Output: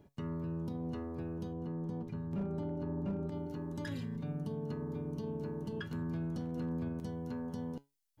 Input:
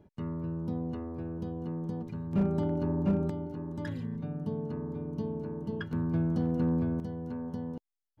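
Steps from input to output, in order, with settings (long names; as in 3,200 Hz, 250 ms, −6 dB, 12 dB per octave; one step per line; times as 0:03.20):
high-shelf EQ 2,600 Hz +8.5 dB, from 0:01.53 −2 dB, from 0:03.32 +11 dB
brickwall limiter −28.5 dBFS, peak gain reduction 8 dB
tuned comb filter 140 Hz, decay 0.23 s, harmonics all, mix 60%
level +3.5 dB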